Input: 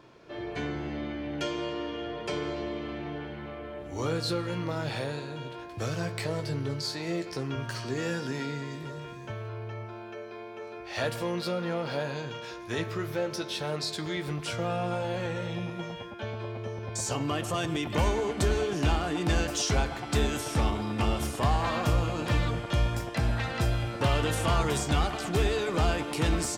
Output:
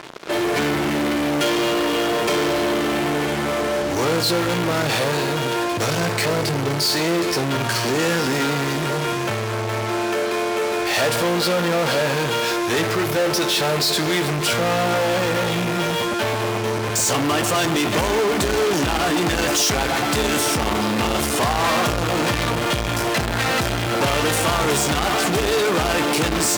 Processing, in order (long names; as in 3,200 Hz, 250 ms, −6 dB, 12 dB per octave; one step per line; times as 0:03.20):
in parallel at −7.5 dB: fuzz pedal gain 50 dB, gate −51 dBFS
on the sum: high-pass filter 56 Hz
parametric band 76 Hz −9 dB 2 octaves
level +1 dB